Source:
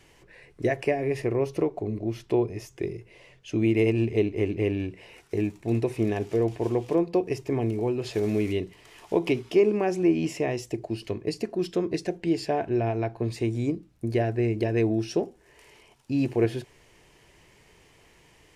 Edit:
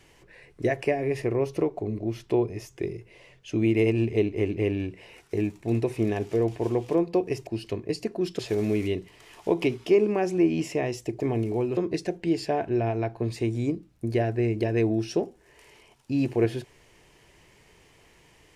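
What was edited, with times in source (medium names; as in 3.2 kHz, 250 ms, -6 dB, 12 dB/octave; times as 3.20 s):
7.47–8.04 s: swap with 10.85–11.77 s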